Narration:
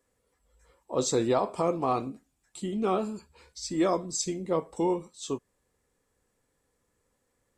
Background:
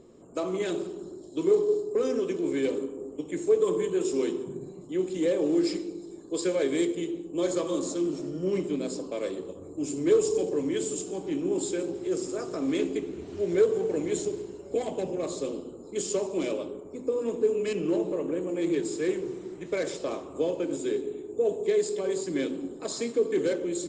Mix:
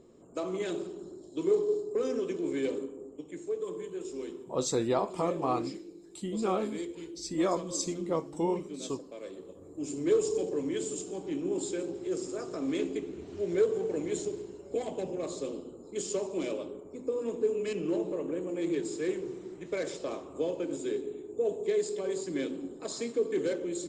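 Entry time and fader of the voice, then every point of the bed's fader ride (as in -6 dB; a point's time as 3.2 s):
3.60 s, -3.0 dB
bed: 2.74 s -4 dB
3.53 s -11.5 dB
9.22 s -11.5 dB
9.93 s -4 dB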